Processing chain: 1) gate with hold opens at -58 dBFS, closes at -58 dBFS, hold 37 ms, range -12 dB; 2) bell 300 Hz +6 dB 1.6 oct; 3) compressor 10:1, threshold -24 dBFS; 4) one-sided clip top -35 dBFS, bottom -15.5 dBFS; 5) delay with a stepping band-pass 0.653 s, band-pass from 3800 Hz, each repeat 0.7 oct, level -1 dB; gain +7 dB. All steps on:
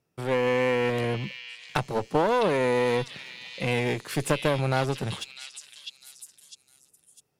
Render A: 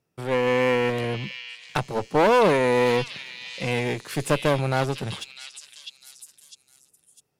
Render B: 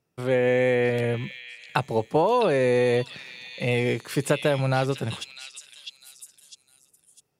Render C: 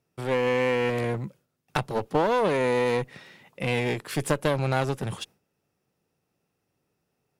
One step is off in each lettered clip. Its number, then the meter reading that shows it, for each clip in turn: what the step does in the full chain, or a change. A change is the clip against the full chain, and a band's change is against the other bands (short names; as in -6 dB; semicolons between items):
3, mean gain reduction 2.0 dB; 4, distortion -9 dB; 5, echo-to-direct -10.5 dB to none